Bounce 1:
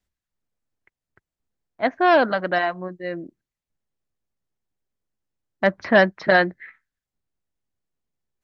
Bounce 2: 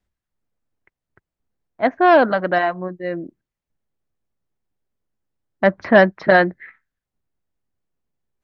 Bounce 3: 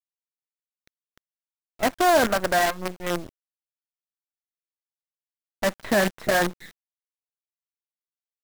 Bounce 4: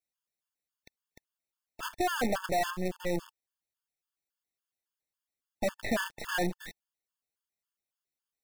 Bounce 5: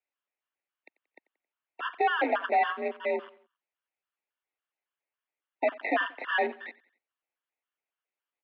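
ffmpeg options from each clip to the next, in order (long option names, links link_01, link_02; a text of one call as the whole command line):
ffmpeg -i in.wav -af "highshelf=frequency=2700:gain=-9.5,volume=4.5dB" out.wav
ffmpeg -i in.wav -af "alimiter=limit=-10.5dB:level=0:latency=1:release=57,flanger=delay=4.7:depth=5.3:regen=70:speed=0.59:shape=sinusoidal,acrusher=bits=5:dc=4:mix=0:aa=0.000001,volume=2.5dB" out.wav
ffmpeg -i in.wav -af "volume=24.5dB,asoftclip=hard,volume=-24.5dB,acompressor=threshold=-39dB:ratio=1.5,afftfilt=real='re*gt(sin(2*PI*3.6*pts/sr)*(1-2*mod(floor(b*sr/1024/890),2)),0)':imag='im*gt(sin(2*PI*3.6*pts/sr)*(1-2*mod(floor(b*sr/1024/890),2)),0)':win_size=1024:overlap=0.75,volume=6dB" out.wav
ffmpeg -i in.wav -af "highpass=frequency=260:width_type=q:width=0.5412,highpass=frequency=260:width_type=q:width=1.307,lowpass=frequency=2900:width_type=q:width=0.5176,lowpass=frequency=2900:width_type=q:width=0.7071,lowpass=frequency=2900:width_type=q:width=1.932,afreqshift=51,equalizer=frequency=410:width_type=o:width=0.75:gain=-3.5,aecho=1:1:90|180|270:0.0891|0.0383|0.0165,volume=5.5dB" out.wav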